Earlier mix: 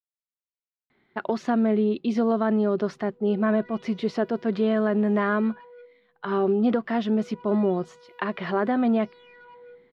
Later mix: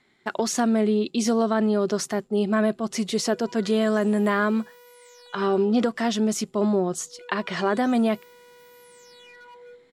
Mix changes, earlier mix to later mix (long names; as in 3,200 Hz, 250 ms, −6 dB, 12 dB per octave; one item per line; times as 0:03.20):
speech: entry −0.90 s
master: remove high-frequency loss of the air 350 metres